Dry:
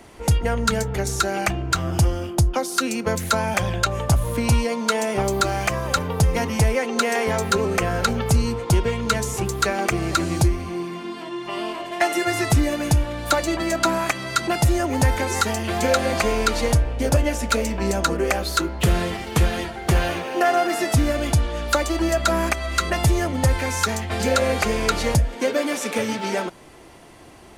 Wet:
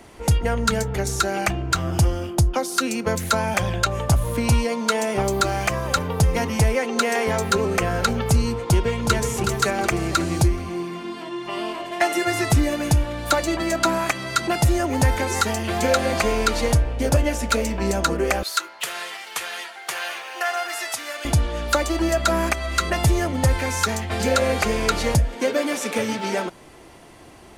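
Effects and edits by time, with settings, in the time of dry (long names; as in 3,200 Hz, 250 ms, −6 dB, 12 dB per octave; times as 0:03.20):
0:08.60–0:09.33: delay throw 370 ms, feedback 40%, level −6.5 dB
0:18.43–0:21.25: high-pass filter 1,100 Hz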